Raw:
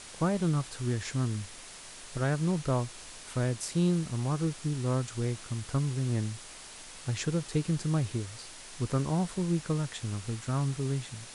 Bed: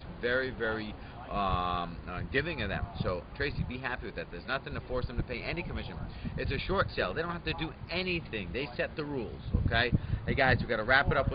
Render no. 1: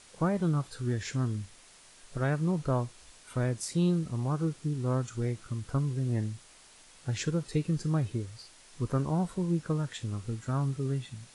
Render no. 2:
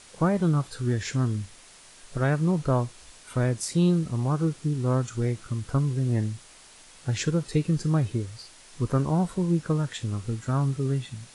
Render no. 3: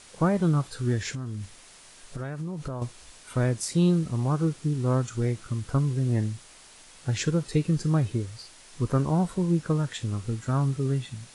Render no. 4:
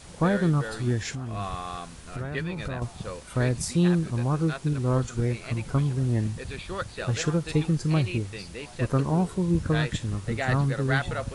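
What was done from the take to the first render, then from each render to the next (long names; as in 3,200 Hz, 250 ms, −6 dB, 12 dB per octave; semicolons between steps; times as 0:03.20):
noise reduction from a noise print 9 dB
level +5 dB
0:01.13–0:02.82: downward compressor 12 to 1, threshold −29 dBFS
mix in bed −3.5 dB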